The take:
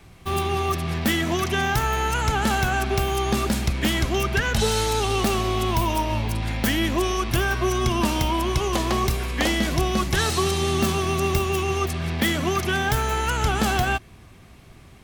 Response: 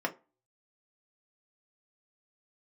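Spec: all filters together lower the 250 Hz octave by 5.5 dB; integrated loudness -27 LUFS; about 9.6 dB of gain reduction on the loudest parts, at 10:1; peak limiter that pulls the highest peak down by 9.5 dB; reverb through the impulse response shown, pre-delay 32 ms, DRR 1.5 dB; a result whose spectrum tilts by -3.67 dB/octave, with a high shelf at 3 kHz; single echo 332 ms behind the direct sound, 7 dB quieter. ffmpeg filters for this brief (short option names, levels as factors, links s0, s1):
-filter_complex "[0:a]equalizer=f=250:t=o:g=-8.5,highshelf=f=3000:g=6,acompressor=threshold=0.0447:ratio=10,alimiter=limit=0.075:level=0:latency=1,aecho=1:1:332:0.447,asplit=2[s0][s1];[1:a]atrim=start_sample=2205,adelay=32[s2];[s1][s2]afir=irnorm=-1:irlink=0,volume=0.376[s3];[s0][s3]amix=inputs=2:normalize=0,volume=1.41"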